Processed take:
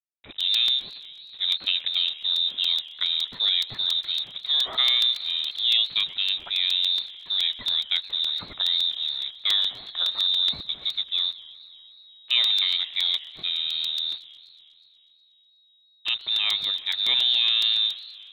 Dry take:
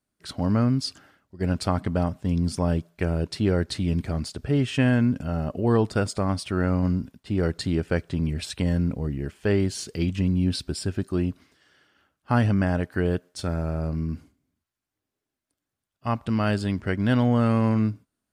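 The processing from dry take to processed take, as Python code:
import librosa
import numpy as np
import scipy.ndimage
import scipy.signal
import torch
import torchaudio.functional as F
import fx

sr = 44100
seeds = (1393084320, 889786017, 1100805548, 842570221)

y = fx.delta_hold(x, sr, step_db=-40.0)
y = fx.freq_invert(y, sr, carrier_hz=3800)
y = fx.buffer_crackle(y, sr, first_s=0.4, period_s=0.14, block=128, kind='repeat')
y = fx.echo_warbled(y, sr, ms=122, feedback_pct=74, rate_hz=2.8, cents=210, wet_db=-20)
y = y * librosa.db_to_amplitude(-1.5)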